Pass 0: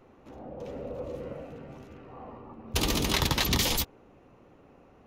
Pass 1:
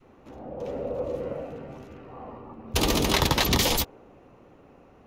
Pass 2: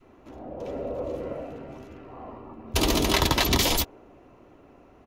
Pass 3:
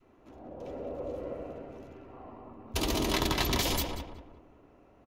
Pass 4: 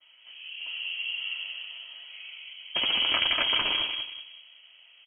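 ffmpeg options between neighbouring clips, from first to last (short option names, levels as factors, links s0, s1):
-af "adynamicequalizer=threshold=0.00708:dfrequency=600:dqfactor=0.73:tfrequency=600:tqfactor=0.73:attack=5:release=100:ratio=0.375:range=2.5:mode=boostabove:tftype=bell,volume=1.33"
-af "aecho=1:1:3:0.31"
-filter_complex "[0:a]asplit=2[s0][s1];[s1]adelay=185,lowpass=f=1700:p=1,volume=0.668,asplit=2[s2][s3];[s3]adelay=185,lowpass=f=1700:p=1,volume=0.39,asplit=2[s4][s5];[s5]adelay=185,lowpass=f=1700:p=1,volume=0.39,asplit=2[s6][s7];[s7]adelay=185,lowpass=f=1700:p=1,volume=0.39,asplit=2[s8][s9];[s9]adelay=185,lowpass=f=1700:p=1,volume=0.39[s10];[s0][s2][s4][s6][s8][s10]amix=inputs=6:normalize=0,volume=0.422"
-af "lowpass=f=2800:t=q:w=0.5098,lowpass=f=2800:t=q:w=0.6013,lowpass=f=2800:t=q:w=0.9,lowpass=f=2800:t=q:w=2.563,afreqshift=-3300,volume=1.58"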